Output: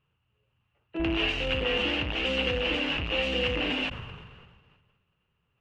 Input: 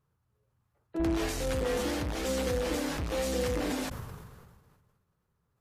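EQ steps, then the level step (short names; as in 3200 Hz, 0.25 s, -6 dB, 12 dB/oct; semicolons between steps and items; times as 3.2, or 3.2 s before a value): synth low-pass 2800 Hz, resonance Q 13; 0.0 dB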